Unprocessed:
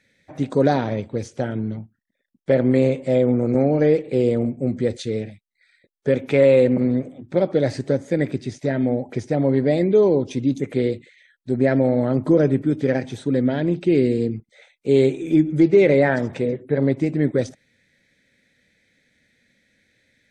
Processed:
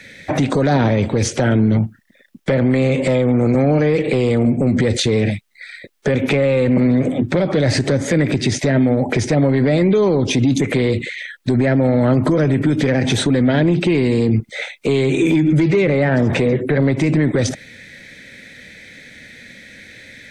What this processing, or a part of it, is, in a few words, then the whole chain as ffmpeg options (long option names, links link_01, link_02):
mastering chain: -filter_complex "[0:a]equalizer=frequency=2300:width_type=o:width=1.5:gain=3.5,acrossover=split=210|860[link_01][link_02][link_03];[link_01]acompressor=threshold=-25dB:ratio=4[link_04];[link_02]acompressor=threshold=-26dB:ratio=4[link_05];[link_03]acompressor=threshold=-33dB:ratio=4[link_06];[link_04][link_05][link_06]amix=inputs=3:normalize=0,acompressor=threshold=-28dB:ratio=2,asoftclip=type=tanh:threshold=-19.5dB,alimiter=level_in=29dB:limit=-1dB:release=50:level=0:latency=1,volume=-7.5dB"